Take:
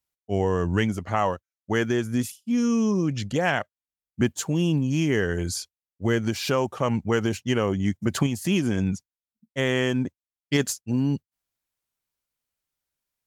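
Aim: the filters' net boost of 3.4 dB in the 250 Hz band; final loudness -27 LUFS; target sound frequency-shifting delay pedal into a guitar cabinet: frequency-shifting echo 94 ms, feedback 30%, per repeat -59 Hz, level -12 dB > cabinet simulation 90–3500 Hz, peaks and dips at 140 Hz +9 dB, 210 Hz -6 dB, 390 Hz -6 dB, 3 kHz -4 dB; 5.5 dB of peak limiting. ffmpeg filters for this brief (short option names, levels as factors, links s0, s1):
-filter_complex "[0:a]equalizer=f=250:t=o:g=7,alimiter=limit=0.266:level=0:latency=1,asplit=4[s0][s1][s2][s3];[s1]adelay=94,afreqshift=-59,volume=0.251[s4];[s2]adelay=188,afreqshift=-118,volume=0.075[s5];[s3]adelay=282,afreqshift=-177,volume=0.0226[s6];[s0][s4][s5][s6]amix=inputs=4:normalize=0,highpass=90,equalizer=f=140:t=q:w=4:g=9,equalizer=f=210:t=q:w=4:g=-6,equalizer=f=390:t=q:w=4:g=-6,equalizer=f=3000:t=q:w=4:g=-4,lowpass=f=3500:w=0.5412,lowpass=f=3500:w=1.3066,volume=0.668"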